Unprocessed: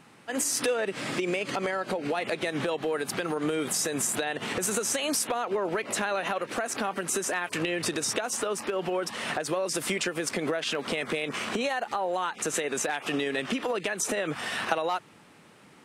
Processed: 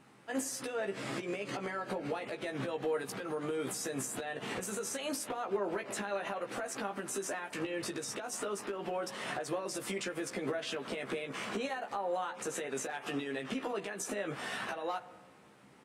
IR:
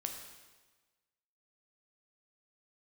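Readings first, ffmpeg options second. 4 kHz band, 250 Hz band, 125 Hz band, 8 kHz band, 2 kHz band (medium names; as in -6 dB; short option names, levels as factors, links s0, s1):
-10.5 dB, -7.0 dB, -6.5 dB, -10.5 dB, -9.0 dB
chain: -filter_complex "[0:a]alimiter=limit=0.0891:level=0:latency=1:release=183,asplit=2[s0][s1];[s1]adelay=15,volume=0.631[s2];[s0][s2]amix=inputs=2:normalize=0,asplit=2[s3][s4];[1:a]atrim=start_sample=2205,asetrate=40572,aresample=44100,lowpass=2100[s5];[s4][s5]afir=irnorm=-1:irlink=0,volume=0.447[s6];[s3][s6]amix=inputs=2:normalize=0,volume=0.355"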